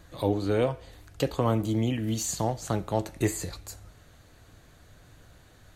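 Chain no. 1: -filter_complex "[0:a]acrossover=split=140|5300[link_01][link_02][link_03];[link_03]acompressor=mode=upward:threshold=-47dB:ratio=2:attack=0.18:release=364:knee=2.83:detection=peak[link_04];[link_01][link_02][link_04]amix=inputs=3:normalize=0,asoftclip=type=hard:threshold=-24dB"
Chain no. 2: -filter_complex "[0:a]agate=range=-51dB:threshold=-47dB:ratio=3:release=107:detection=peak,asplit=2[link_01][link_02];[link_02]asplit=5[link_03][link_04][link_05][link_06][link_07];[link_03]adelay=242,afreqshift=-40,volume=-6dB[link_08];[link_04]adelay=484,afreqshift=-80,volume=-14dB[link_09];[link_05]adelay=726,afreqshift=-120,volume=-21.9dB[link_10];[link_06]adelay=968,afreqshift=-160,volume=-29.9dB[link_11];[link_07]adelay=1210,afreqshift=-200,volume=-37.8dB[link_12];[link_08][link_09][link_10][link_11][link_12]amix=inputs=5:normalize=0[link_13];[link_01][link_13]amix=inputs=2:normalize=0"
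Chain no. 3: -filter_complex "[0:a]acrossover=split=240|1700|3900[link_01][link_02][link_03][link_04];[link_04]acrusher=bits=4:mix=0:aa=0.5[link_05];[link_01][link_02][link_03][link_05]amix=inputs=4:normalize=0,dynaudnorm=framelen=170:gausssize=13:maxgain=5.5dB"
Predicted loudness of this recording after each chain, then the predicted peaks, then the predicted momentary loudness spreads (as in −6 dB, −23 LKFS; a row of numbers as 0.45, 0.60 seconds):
−31.0, −28.0, −24.5 LKFS; −24.0, −11.0, −7.5 dBFS; 13, 11, 12 LU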